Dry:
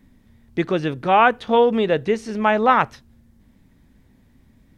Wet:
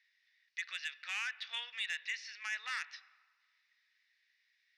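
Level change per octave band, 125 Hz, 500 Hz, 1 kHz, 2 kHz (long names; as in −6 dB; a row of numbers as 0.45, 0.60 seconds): below −40 dB, below −40 dB, −33.0 dB, −13.0 dB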